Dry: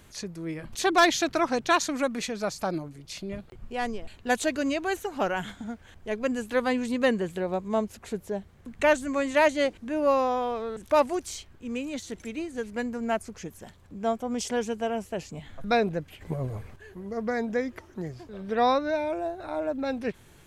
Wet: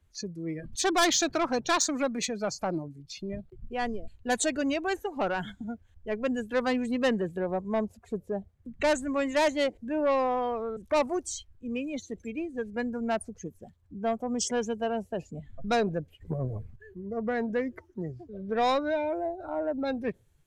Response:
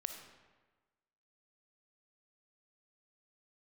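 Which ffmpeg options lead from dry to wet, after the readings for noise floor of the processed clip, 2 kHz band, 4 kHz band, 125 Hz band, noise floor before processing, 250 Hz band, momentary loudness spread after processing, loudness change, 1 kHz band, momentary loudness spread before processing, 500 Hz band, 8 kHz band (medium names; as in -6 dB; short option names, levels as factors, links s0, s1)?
-62 dBFS, -3.5 dB, 0.0 dB, -0.5 dB, -54 dBFS, -1.0 dB, 13 LU, -2.0 dB, -3.0 dB, 15 LU, -2.0 dB, +3.5 dB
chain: -filter_complex "[0:a]afftdn=nr=22:nf=-38,acrossover=split=110[s0][s1];[s1]asoftclip=type=tanh:threshold=0.112[s2];[s0][s2]amix=inputs=2:normalize=0,adynamicequalizer=threshold=0.00398:dfrequency=4300:dqfactor=0.7:tfrequency=4300:tqfactor=0.7:attack=5:release=100:ratio=0.375:range=4:mode=boostabove:tftype=highshelf"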